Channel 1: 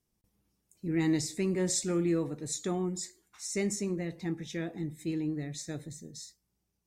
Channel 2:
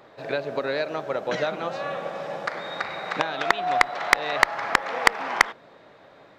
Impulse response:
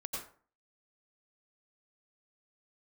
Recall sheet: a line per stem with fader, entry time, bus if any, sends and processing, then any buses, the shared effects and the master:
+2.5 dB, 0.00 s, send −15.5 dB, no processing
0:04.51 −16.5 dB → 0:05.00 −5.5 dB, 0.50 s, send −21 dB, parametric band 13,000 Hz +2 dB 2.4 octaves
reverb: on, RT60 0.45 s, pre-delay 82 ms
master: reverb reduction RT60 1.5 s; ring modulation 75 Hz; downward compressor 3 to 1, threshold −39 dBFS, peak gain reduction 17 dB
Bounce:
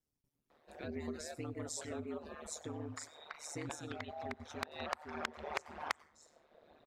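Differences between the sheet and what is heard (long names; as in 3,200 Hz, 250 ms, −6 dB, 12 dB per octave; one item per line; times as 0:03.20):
stem 1 +2.5 dB → −8.5 dB
reverb return +9.0 dB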